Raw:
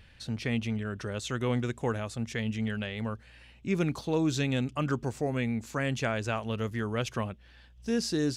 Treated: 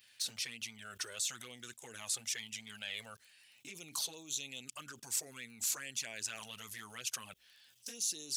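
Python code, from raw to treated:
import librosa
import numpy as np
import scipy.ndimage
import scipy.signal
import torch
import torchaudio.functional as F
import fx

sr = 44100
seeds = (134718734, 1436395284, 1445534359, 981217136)

y = scipy.signal.sosfilt(scipy.signal.butter(2, 77.0, 'highpass', fs=sr, output='sos'), x)
y = fx.high_shelf(y, sr, hz=3000.0, db=9.5)
y = fx.env_flanger(y, sr, rest_ms=9.8, full_db=-23.5)
y = fx.level_steps(y, sr, step_db=24)
y = fx.dmg_crackle(y, sr, seeds[0], per_s=17.0, level_db=-65.0)
y = fx.tilt_eq(y, sr, slope=4.5)
y = F.gain(torch.from_numpy(y), 2.0).numpy()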